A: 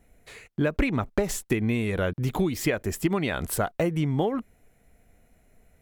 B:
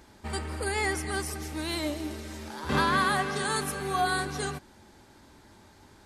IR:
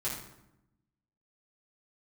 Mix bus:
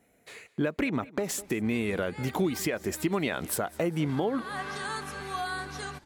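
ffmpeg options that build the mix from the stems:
-filter_complex "[0:a]highpass=190,volume=-0.5dB,asplit=3[a][b][c];[b]volume=-21.5dB[d];[1:a]acrossover=split=790|1900|7300[e][f][g][h];[e]acompressor=threshold=-41dB:ratio=4[i];[f]acompressor=threshold=-32dB:ratio=4[j];[g]acompressor=threshold=-41dB:ratio=4[k];[h]acompressor=threshold=-55dB:ratio=4[l];[i][j][k][l]amix=inputs=4:normalize=0,adelay=1400,volume=-1dB[m];[c]apad=whole_len=328973[n];[m][n]sidechaincompress=threshold=-38dB:ratio=8:attack=8.9:release=228[o];[d]aecho=0:1:202|404|606|808|1010:1|0.38|0.144|0.0549|0.0209[p];[a][o][p]amix=inputs=3:normalize=0,lowshelf=f=68:g=7,alimiter=limit=-17.5dB:level=0:latency=1:release=124"

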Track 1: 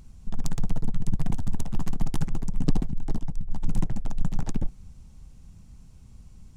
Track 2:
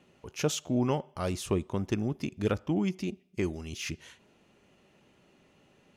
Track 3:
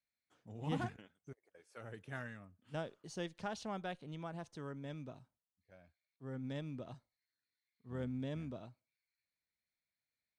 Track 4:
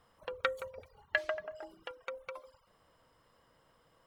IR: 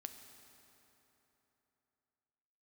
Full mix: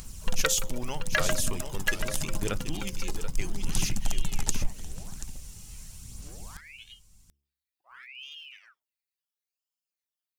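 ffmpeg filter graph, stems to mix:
-filter_complex "[0:a]alimiter=limit=-19dB:level=0:latency=1:release=390,volume=0.5dB,asplit=2[a][b];[b]volume=-15dB[c];[1:a]volume=-10dB,asplit=3[d][e][f];[e]volume=-8.5dB[g];[2:a]bass=f=250:g=6,treble=f=4k:g=-4,alimiter=level_in=10.5dB:limit=-24dB:level=0:latency=1:release=365,volume=-10.5dB,aeval=exprs='val(0)*sin(2*PI*1600*n/s+1600*0.9/0.72*sin(2*PI*0.72*n/s))':c=same,volume=-13dB[h];[3:a]volume=-3.5dB,asplit=2[i][j];[j]volume=-3.5dB[k];[f]apad=whole_len=289562[l];[a][l]sidechaincompress=threshold=-40dB:ratio=8:attack=30:release=915[m];[c][g][k]amix=inputs=3:normalize=0,aecho=0:1:733:1[n];[m][d][h][i][n]amix=inputs=5:normalize=0,bandreject=f=69.82:t=h:w=4,bandreject=f=139.64:t=h:w=4,bandreject=f=209.46:t=h:w=4,bandreject=f=279.28:t=h:w=4,bandreject=f=349.1:t=h:w=4,bandreject=f=418.92:t=h:w=4,aphaser=in_gain=1:out_gain=1:delay=2.4:decay=0.35:speed=0.8:type=sinusoidal,crystalizer=i=8.5:c=0"

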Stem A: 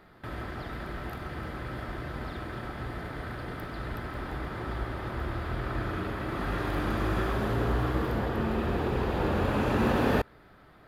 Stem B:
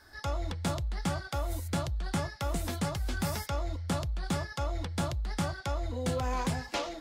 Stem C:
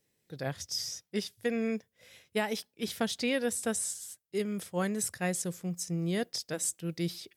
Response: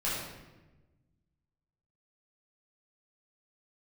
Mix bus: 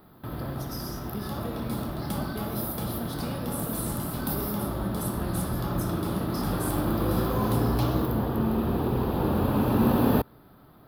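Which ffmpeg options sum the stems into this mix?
-filter_complex "[0:a]volume=-2dB[a];[1:a]highpass=210,acompressor=threshold=-39dB:ratio=2.5,adelay=1050,volume=-0.5dB,asplit=2[b][c];[c]volume=-7dB[d];[2:a]acompressor=threshold=-32dB:ratio=6,volume=-10.5dB,asplit=3[e][f][g];[f]volume=-4.5dB[h];[g]apad=whole_len=355280[i];[b][i]sidechaincompress=threshold=-58dB:ratio=8:attack=16:release=346[j];[3:a]atrim=start_sample=2205[k];[d][h]amix=inputs=2:normalize=0[l];[l][k]afir=irnorm=-1:irlink=0[m];[a][j][e][m]amix=inputs=4:normalize=0,equalizer=f=125:t=o:w=1:g=6,equalizer=f=250:t=o:w=1:g=7,equalizer=f=1k:t=o:w=1:g=5,equalizer=f=2k:t=o:w=1:g=-9,equalizer=f=4k:t=o:w=1:g=5,equalizer=f=8k:t=o:w=1:g=-7,aexciter=amount=8.4:drive=6.4:freq=9.8k"

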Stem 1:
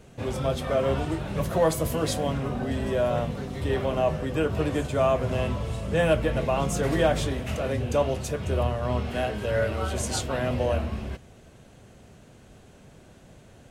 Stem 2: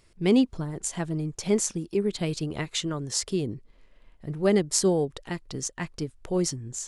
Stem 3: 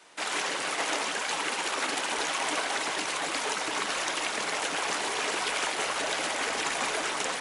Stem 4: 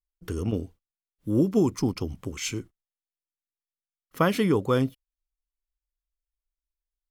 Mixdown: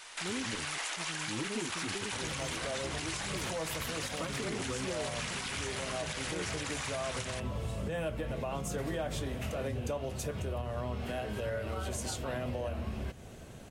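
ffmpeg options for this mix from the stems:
-filter_complex "[0:a]highshelf=f=11k:g=6.5,adelay=1950,volume=2dB[a];[1:a]volume=-13.5dB[b];[2:a]tiltshelf=f=640:g=-9.5,volume=-1dB[c];[3:a]asplit=2[d][e];[e]adelay=8.6,afreqshift=1.1[f];[d][f]amix=inputs=2:normalize=1,volume=-8.5dB[g];[a][c]amix=inputs=2:normalize=0,acompressor=threshold=-35dB:ratio=3,volume=0dB[h];[b][g][h]amix=inputs=3:normalize=0,alimiter=level_in=2.5dB:limit=-24dB:level=0:latency=1:release=86,volume=-2.5dB"

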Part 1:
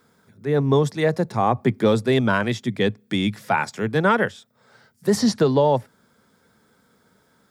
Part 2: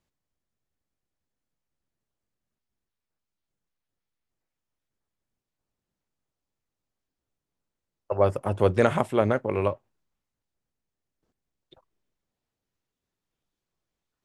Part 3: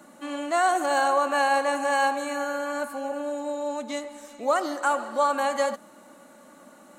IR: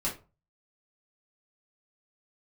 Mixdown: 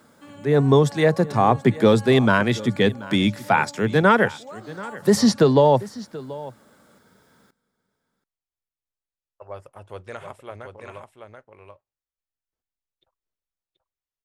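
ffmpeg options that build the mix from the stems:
-filter_complex "[0:a]volume=2.5dB,asplit=3[a][b][c];[b]volume=-18.5dB[d];[1:a]equalizer=f=220:t=o:w=2.5:g=-11.5,adelay=1300,volume=-10.5dB,asplit=2[e][f];[f]volume=-5.5dB[g];[2:a]acompressor=threshold=-35dB:ratio=2,volume=-8.5dB[h];[c]apad=whole_len=308063[i];[h][i]sidechaincompress=threshold=-18dB:ratio=8:attack=38:release=249[j];[d][g]amix=inputs=2:normalize=0,aecho=0:1:732:1[k];[a][e][j][k]amix=inputs=4:normalize=0"

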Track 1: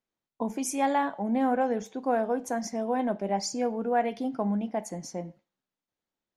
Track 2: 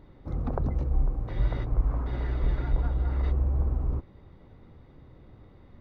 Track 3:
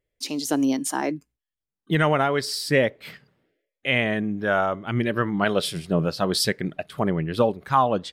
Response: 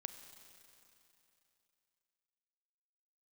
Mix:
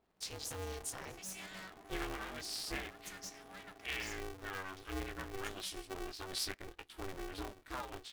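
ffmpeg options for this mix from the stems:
-filter_complex "[0:a]highpass=f=1.3k:w=0.5412,highpass=f=1.3k:w=1.3066,aeval=exprs='(tanh(100*val(0)+0.35)-tanh(0.35))/100':c=same,adelay=600,volume=3dB[a];[1:a]alimiter=limit=-23dB:level=0:latency=1:release=45,aeval=exprs='val(0)*sin(2*PI*540*n/s)':c=same,volume=-12.5dB[b];[2:a]flanger=delay=17.5:depth=2.6:speed=1.6,volume=-1.5dB[c];[a][c]amix=inputs=2:normalize=0,acompressor=threshold=-51dB:ratio=1.5,volume=0dB[d];[b][d]amix=inputs=2:normalize=0,equalizer=f=540:w=0.6:g=-14.5,aeval=exprs='val(0)*sgn(sin(2*PI*190*n/s))':c=same"

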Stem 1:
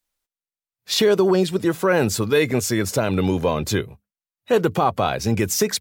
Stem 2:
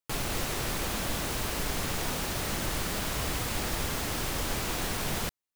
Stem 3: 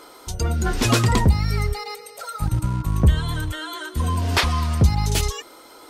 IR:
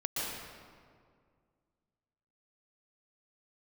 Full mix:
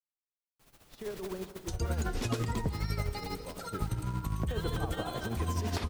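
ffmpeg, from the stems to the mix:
-filter_complex "[0:a]highshelf=f=3.3k:g=-10.5,volume=-9.5dB,afade=t=in:st=3.57:d=0.44:silence=0.266073,asplit=2[a][b];[b]volume=-14dB[c];[1:a]highshelf=f=12k:g=5.5,tremolo=f=16:d=0.7,adelay=500,volume=-11.5dB,asplit=2[d][e];[e]volume=-18dB[f];[2:a]agate=range=-33dB:threshold=-36dB:ratio=3:detection=peak,acompressor=threshold=-19dB:ratio=6,adelay=1400,volume=-4.5dB,asplit=2[g][h];[h]volume=-18dB[i];[a][d]amix=inputs=2:normalize=0,agate=range=-21dB:threshold=-39dB:ratio=16:detection=peak,alimiter=level_in=4dB:limit=-24dB:level=0:latency=1:release=27,volume=-4dB,volume=0dB[j];[3:a]atrim=start_sample=2205[k];[c][f][i]amix=inputs=3:normalize=0[l];[l][k]afir=irnorm=-1:irlink=0[m];[g][j][m]amix=inputs=3:normalize=0,acrossover=split=700|7600[n][o][p];[n]acompressor=threshold=-27dB:ratio=4[q];[o]acompressor=threshold=-38dB:ratio=4[r];[p]acompressor=threshold=-50dB:ratio=4[s];[q][r][s]amix=inputs=3:normalize=0,tremolo=f=12:d=0.55"

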